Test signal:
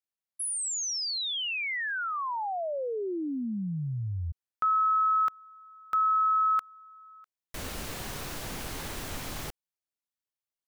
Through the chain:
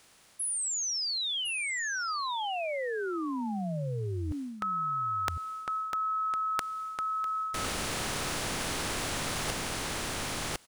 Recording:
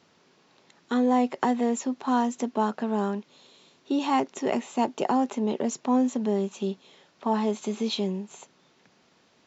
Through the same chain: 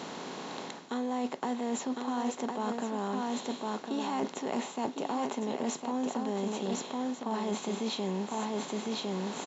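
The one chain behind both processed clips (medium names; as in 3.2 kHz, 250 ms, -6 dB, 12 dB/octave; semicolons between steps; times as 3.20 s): spectral levelling over time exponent 0.6; delay 1056 ms -6.5 dB; reverse; compression 6:1, threshold -33 dBFS; reverse; trim +2.5 dB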